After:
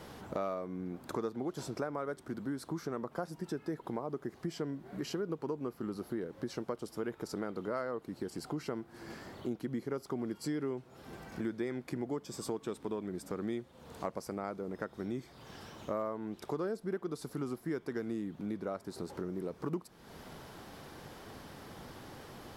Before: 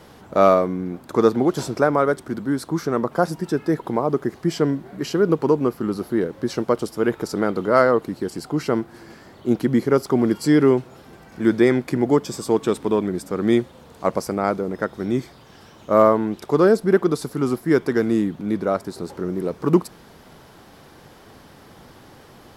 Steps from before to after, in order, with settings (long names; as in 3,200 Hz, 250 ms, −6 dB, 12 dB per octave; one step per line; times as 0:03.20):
downward compressor 4 to 1, threshold −34 dBFS, peak gain reduction 20 dB
level −3 dB